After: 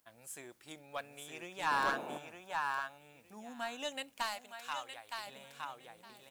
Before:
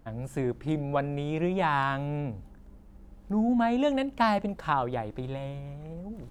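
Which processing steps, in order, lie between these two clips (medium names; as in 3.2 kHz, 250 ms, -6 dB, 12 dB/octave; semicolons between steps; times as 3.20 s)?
differentiator; feedback delay 914 ms, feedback 19%, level -5 dB; 1.67–2.98 s: time-frequency box 580–1800 Hz +7 dB; 1.70–2.17 s: band noise 190–940 Hz -49 dBFS; saturation -34.5 dBFS, distortion -10 dB; 4.22–5.27 s: peaking EQ 240 Hz -11.5 dB 2 oct; upward expansion 1.5:1, over -53 dBFS; trim +9.5 dB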